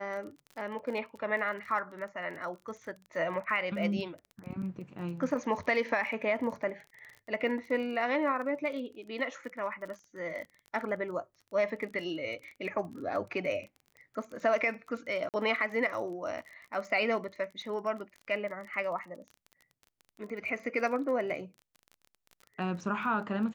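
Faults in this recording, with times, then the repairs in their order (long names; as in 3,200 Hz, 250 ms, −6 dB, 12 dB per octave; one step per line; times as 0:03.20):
surface crackle 26 per second −40 dBFS
0:15.29–0:15.34: drop-out 48 ms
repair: click removal
repair the gap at 0:15.29, 48 ms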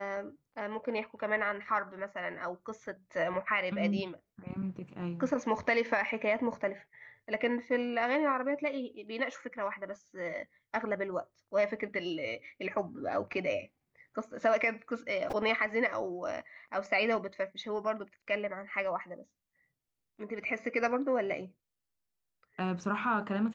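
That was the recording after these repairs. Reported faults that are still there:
none of them is left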